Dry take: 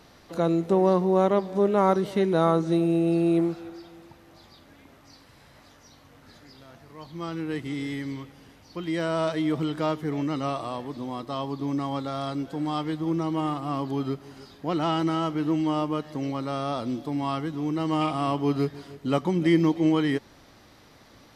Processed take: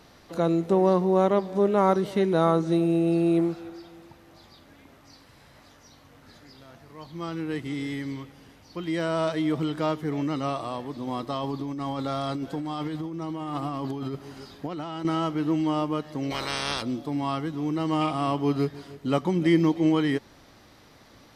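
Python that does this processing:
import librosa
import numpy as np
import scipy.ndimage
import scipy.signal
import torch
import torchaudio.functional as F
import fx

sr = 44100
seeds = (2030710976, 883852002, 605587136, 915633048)

y = fx.over_compress(x, sr, threshold_db=-31.0, ratio=-1.0, at=(11.07, 15.05))
y = fx.spec_clip(y, sr, under_db=26, at=(16.3, 16.81), fade=0.02)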